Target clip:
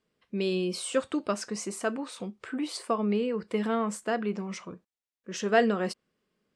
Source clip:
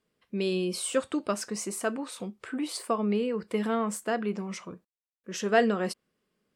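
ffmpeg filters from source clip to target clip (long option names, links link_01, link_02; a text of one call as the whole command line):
ffmpeg -i in.wav -af "lowpass=8000" out.wav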